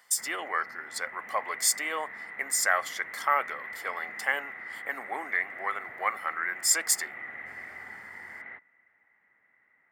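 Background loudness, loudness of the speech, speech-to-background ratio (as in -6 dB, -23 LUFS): -40.5 LUFS, -29.5 LUFS, 11.0 dB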